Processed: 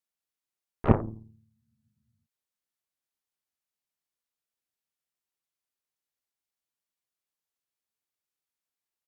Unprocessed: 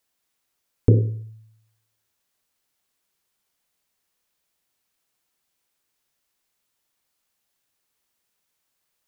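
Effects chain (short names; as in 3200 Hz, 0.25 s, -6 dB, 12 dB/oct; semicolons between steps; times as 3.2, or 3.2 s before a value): harmoniser -4 st -6 dB, +5 st -8 dB, +12 st -3 dB; added harmonics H 3 -8 dB, 8 -23 dB, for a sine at -2.5 dBFS; spectral freeze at 1.56, 0.67 s; gain -3.5 dB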